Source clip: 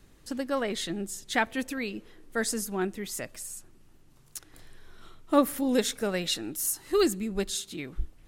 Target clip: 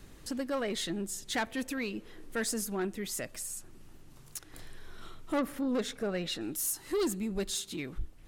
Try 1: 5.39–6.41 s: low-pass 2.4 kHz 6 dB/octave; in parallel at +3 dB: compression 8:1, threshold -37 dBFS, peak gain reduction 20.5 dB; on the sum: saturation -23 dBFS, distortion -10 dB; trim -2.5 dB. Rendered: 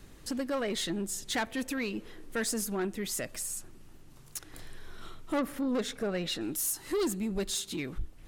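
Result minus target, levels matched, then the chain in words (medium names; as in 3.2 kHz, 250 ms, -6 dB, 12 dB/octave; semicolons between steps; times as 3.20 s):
compression: peak gain reduction -8.5 dB
5.39–6.41 s: low-pass 2.4 kHz 6 dB/octave; in parallel at +3 dB: compression 8:1, threshold -46.5 dBFS, peak gain reduction 29 dB; on the sum: saturation -23 dBFS, distortion -10 dB; trim -2.5 dB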